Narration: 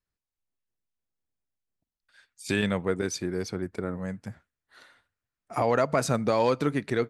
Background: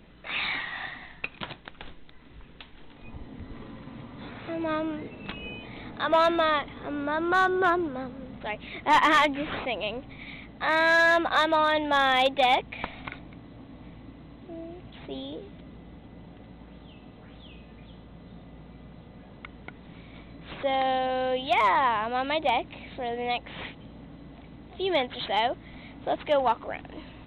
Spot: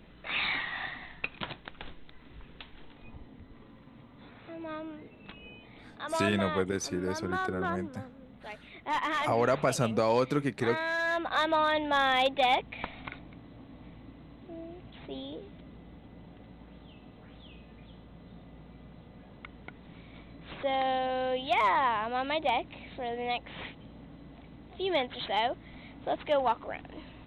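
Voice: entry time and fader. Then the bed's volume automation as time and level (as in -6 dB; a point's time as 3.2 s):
3.70 s, -2.5 dB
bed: 2.79 s -1 dB
3.5 s -10.5 dB
10.99 s -10.5 dB
11.5 s -3.5 dB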